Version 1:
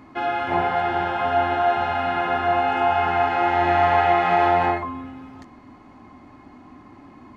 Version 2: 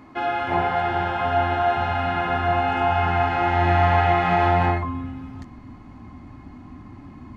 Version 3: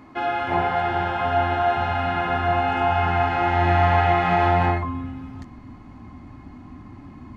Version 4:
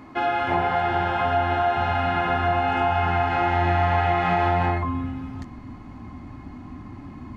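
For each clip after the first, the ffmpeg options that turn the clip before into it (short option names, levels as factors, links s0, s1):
-af "asubboost=boost=4.5:cutoff=200"
-af anull
-af "acompressor=threshold=0.0794:ratio=2.5,volume=1.33"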